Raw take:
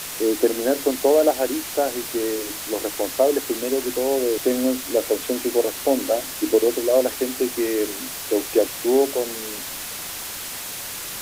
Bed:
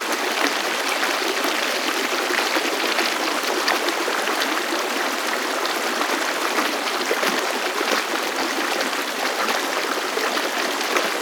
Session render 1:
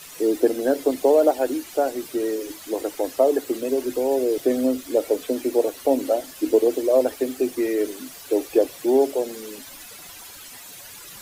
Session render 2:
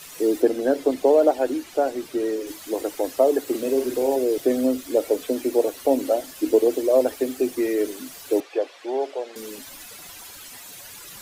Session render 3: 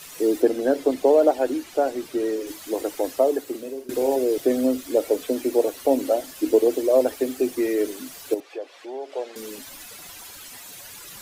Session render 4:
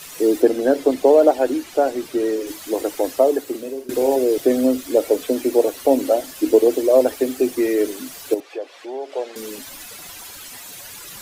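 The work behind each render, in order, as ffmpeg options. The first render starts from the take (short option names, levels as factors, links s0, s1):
-af "afftdn=nr=13:nf=-32"
-filter_complex "[0:a]asettb=1/sr,asplit=3[s0][s1][s2];[s0]atrim=end=0.424[s3];[s1]atrim=start=0.42:end=2.47,asetpts=PTS-STARTPTS,afade=t=in:d=0.004:c=qsin,afade=t=out:st=2.046:d=0.004:c=qsin,highshelf=f=7600:g=-9.5[s4];[s2]atrim=start=2.466[s5];[s3][s4]acrossfade=d=0.004:c1=hsin:c2=qsin[s6];[s6][s5]acrossfade=d=0.004:c1=qsin:c2=hsin,asettb=1/sr,asplit=3[s7][s8][s9];[s7]atrim=end=3.434[s10];[s8]atrim=start=3.43:end=4.16,asetpts=PTS-STARTPTS,afade=t=in:d=0.004:c=qsin,afade=t=out:st=0.726:d=0.004:c=qsin,asplit=2[s11][s12];[s12]adelay=45,volume=0.531[s13];[s11][s13]amix=inputs=2:normalize=0,atrim=end_sample=32193[s14];[s9]atrim=start=4.156[s15];[s10][s14]acrossfade=d=0.004:c1=hsin:c2=qsin[s16];[s16][s15]acrossfade=d=0.004:c1=qsin:c2=hsin,asettb=1/sr,asplit=3[s17][s18][s19];[s17]atrim=end=8.404[s20];[s18]atrim=start=8.4:end=9.36,asetpts=PTS-STARTPTS,afade=t=in:d=0.004:c=qsin,afade=t=out:st=0.956:d=0.004:c=qsin,highpass=620,lowpass=3600[s21];[s19]atrim=start=9.356[s22];[s20][s21]acrossfade=d=0.004:c1=hsin:c2=qsin[s23];[s23][s22]acrossfade=d=0.004:c1=qsin:c2=hsin"
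-filter_complex "[0:a]asettb=1/sr,asplit=3[s0][s1][s2];[s0]atrim=end=8.344[s3];[s1]atrim=start=8.34:end=9.12,asetpts=PTS-STARTPTS,afade=t=in:d=0.004:c=qsin,afade=t=out:st=0.776:d=0.004:c=qsin,acompressor=threshold=0.00631:ratio=1.5:attack=3.2:release=140:knee=1:detection=peak[s4];[s2]atrim=start=9.116[s5];[s3][s4]acrossfade=d=0.004:c1=hsin:c2=qsin[s6];[s6][s5]acrossfade=d=0.004:c1=qsin:c2=hsin,asplit=2[s7][s8];[s7]atrim=end=3.89,asetpts=PTS-STARTPTS,afade=t=out:st=3.1:d=0.79:silence=0.105925[s9];[s8]atrim=start=3.89,asetpts=PTS-STARTPTS,afade=t=in:d=0.004:c=hsin:silence=0.105925[s10];[s9][s10]concat=n=2:v=0:a=1"
-af "volume=1.58"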